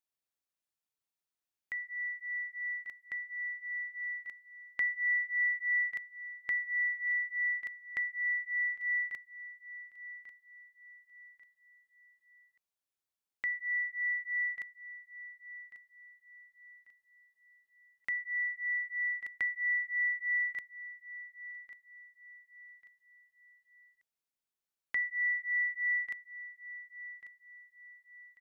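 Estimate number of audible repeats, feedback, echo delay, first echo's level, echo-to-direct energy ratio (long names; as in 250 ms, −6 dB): 3, 37%, 1,142 ms, −14.5 dB, −14.0 dB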